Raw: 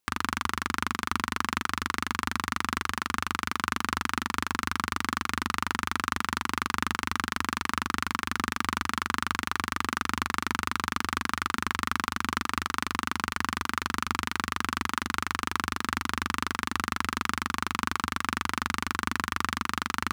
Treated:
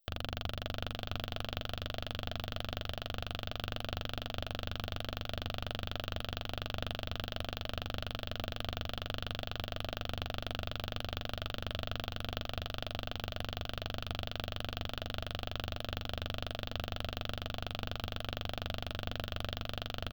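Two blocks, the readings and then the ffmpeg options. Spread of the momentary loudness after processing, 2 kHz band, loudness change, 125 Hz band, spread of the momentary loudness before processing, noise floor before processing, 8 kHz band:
1 LU, −15.0 dB, −10.0 dB, 0.0 dB, 1 LU, −57 dBFS, −20.0 dB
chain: -filter_complex "[0:a]aeval=exprs='if(lt(val(0),0),0.447*val(0),val(0))':channel_layout=same,highshelf=frequency=2600:width_type=q:width=3:gain=7.5,bandreject=frequency=60:width_type=h:width=6,bandreject=frequency=120:width_type=h:width=6,bandreject=frequency=180:width_type=h:width=6,bandreject=frequency=240:width_type=h:width=6,acrossover=split=3800[link_01][link_02];[link_02]acompressor=threshold=-37dB:ratio=4:attack=1:release=60[link_03];[link_01][link_03]amix=inputs=2:normalize=0,firequalizer=gain_entry='entry(120,0);entry(210,-10);entry(360,-14);entry(650,10);entry(960,-22);entry(1400,-12);entry(3600,-14);entry(5500,-15);entry(11000,-29);entry(16000,5)':delay=0.05:min_phase=1,aecho=1:1:298|596|894:0.141|0.0565|0.0226,volume=1.5dB"

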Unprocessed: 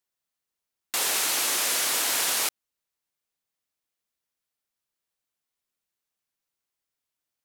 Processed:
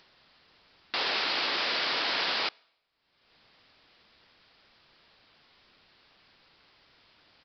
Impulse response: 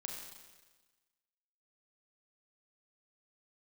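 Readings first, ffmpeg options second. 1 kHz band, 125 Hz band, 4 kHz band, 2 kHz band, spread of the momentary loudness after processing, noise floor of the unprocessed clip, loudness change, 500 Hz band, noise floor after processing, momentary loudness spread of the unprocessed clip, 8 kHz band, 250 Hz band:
+0.5 dB, can't be measured, −0.5 dB, +0.5 dB, 4 LU, below −85 dBFS, −4.5 dB, +0.5 dB, −74 dBFS, 5 LU, −29.0 dB, +0.5 dB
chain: -filter_complex "[0:a]acompressor=mode=upward:threshold=-33dB:ratio=2.5,asplit=2[link_01][link_02];[1:a]atrim=start_sample=2205,asetrate=70560,aresample=44100[link_03];[link_02][link_03]afir=irnorm=-1:irlink=0,volume=-18.5dB[link_04];[link_01][link_04]amix=inputs=2:normalize=0,aresample=11025,aresample=44100"

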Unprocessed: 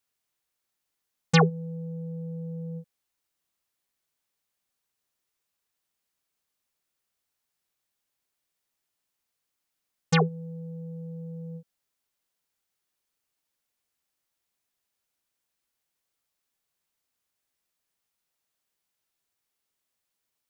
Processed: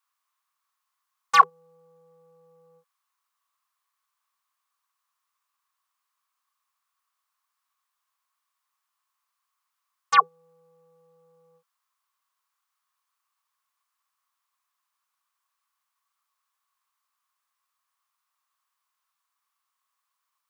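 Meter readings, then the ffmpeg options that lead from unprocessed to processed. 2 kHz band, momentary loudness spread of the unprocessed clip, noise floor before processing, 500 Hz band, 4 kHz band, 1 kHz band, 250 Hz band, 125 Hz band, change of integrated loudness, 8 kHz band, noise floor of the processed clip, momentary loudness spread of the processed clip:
+3.5 dB, 18 LU, −83 dBFS, −13.5 dB, −1.0 dB, +11.5 dB, below −30 dB, below −30 dB, +8.5 dB, −1.5 dB, −82 dBFS, 3 LU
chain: -af "asoftclip=type=hard:threshold=-12.5dB,highpass=frequency=1100:width_type=q:width=9,volume=-1dB"

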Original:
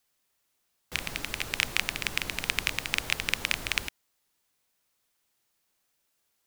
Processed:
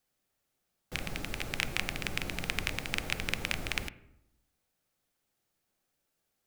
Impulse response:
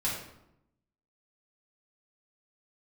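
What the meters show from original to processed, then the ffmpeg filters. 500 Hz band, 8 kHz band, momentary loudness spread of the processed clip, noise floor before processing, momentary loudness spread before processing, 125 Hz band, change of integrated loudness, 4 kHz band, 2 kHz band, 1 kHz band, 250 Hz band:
+0.5 dB, −6.5 dB, 6 LU, −76 dBFS, 7 LU, +2.5 dB, −5.0 dB, −6.0 dB, −5.0 dB, −3.0 dB, +2.5 dB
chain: -filter_complex "[0:a]tiltshelf=frequency=970:gain=4,bandreject=frequency=990:width=7.8,asplit=2[link_01][link_02];[1:a]atrim=start_sample=2205,lowpass=2200[link_03];[link_02][link_03]afir=irnorm=-1:irlink=0,volume=-17dB[link_04];[link_01][link_04]amix=inputs=2:normalize=0,volume=-2.5dB"

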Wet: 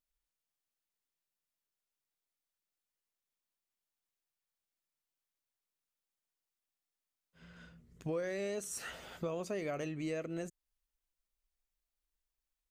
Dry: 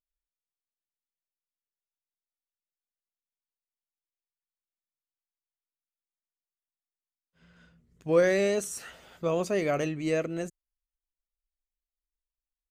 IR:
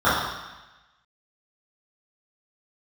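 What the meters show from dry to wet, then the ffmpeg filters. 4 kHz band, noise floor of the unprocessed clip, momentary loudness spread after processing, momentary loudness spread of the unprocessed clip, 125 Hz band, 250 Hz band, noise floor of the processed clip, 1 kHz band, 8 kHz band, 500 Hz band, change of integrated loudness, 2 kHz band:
−8.0 dB, below −85 dBFS, 20 LU, 17 LU, −8.5 dB, −9.5 dB, below −85 dBFS, −11.0 dB, −6.5 dB, −12.5 dB, −12.0 dB, −11.0 dB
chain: -af "acompressor=threshold=-40dB:ratio=5,volume=3dB"

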